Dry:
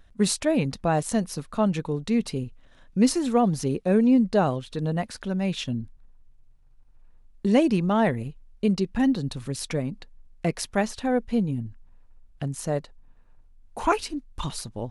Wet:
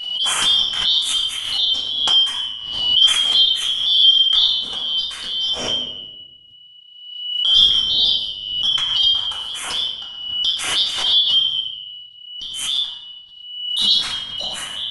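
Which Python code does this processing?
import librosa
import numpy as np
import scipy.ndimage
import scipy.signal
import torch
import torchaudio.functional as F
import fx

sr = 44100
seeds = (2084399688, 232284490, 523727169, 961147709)

y = fx.band_shuffle(x, sr, order='3412')
y = fx.room_shoebox(y, sr, seeds[0], volume_m3=380.0, walls='mixed', distance_m=2.2)
y = fx.pre_swell(y, sr, db_per_s=50.0)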